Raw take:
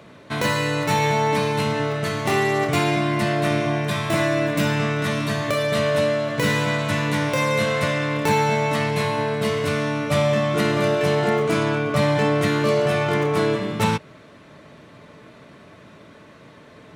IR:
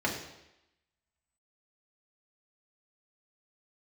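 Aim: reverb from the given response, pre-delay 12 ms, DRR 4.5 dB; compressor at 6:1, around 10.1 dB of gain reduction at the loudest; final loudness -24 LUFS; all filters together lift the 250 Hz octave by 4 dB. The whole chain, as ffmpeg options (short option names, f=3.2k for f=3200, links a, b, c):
-filter_complex "[0:a]equalizer=f=250:t=o:g=5.5,acompressor=threshold=-25dB:ratio=6,asplit=2[a][b];[1:a]atrim=start_sample=2205,adelay=12[c];[b][c]afir=irnorm=-1:irlink=0,volume=-14dB[d];[a][d]amix=inputs=2:normalize=0,volume=2dB"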